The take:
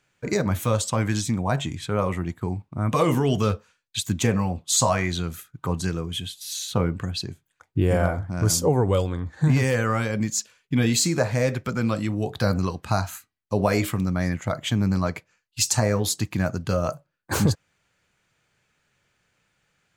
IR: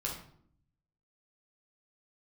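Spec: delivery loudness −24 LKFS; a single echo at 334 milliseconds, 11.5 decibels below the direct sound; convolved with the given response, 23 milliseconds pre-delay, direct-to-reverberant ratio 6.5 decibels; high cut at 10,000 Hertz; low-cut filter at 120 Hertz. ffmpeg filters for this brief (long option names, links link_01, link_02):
-filter_complex "[0:a]highpass=120,lowpass=10000,aecho=1:1:334:0.266,asplit=2[link_01][link_02];[1:a]atrim=start_sample=2205,adelay=23[link_03];[link_02][link_03]afir=irnorm=-1:irlink=0,volume=-9dB[link_04];[link_01][link_04]amix=inputs=2:normalize=0"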